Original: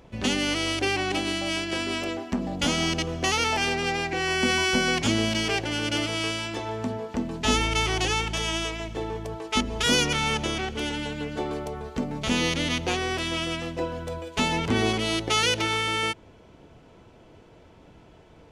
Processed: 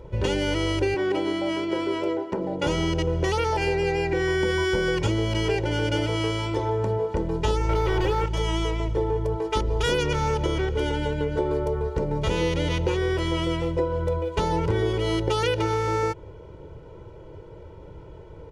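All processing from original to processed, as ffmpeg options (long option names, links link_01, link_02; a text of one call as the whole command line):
ffmpeg -i in.wav -filter_complex "[0:a]asettb=1/sr,asplit=3[link_01][link_02][link_03];[link_01]atrim=end=0.944[link_04];[link_02]atrim=start=0.94:end=2.67,asetpts=PTS-STARTPTS,afade=type=in:duration=0.004:curve=qsin,afade=type=out:start_time=1.726:duration=0.004:curve=qsin,highpass=210,highshelf=frequency=3000:gain=-8.5[link_05];[link_03]atrim=start=2.666[link_06];[link_04][link_05]acrossfade=duration=0.004:curve1=hsin:curve2=qsin[link_07];[link_07][link_06]acrossfade=duration=0.004:curve1=qsin:curve2=hsin,asettb=1/sr,asplit=3[link_08][link_09][link_10];[link_08]atrim=end=7.694[link_11];[link_09]atrim=start=7.69:end=8.26,asetpts=PTS-STARTPTS,afade=type=in:duration=0.004:curve=qsin,afade=type=out:start_time=0.566:duration=0.004:curve=qsin,lowshelf=frequency=130:gain=9,asplit=2[link_12][link_13];[link_13]highpass=frequency=720:poles=1,volume=25dB,asoftclip=type=tanh:threshold=-10dB[link_14];[link_12][link_14]amix=inputs=2:normalize=0,lowpass=frequency=1700:poles=1,volume=-6dB[link_15];[link_10]atrim=start=8.256[link_16];[link_11][link_15]acrossfade=duration=0.004:curve1=hsin:curve2=qsin[link_17];[link_17][link_16]acrossfade=duration=0.004:curve1=qsin:curve2=hsin,tiltshelf=frequency=1200:gain=7.5,aecho=1:1:2.1:0.96,acompressor=threshold=-20dB:ratio=6" out.wav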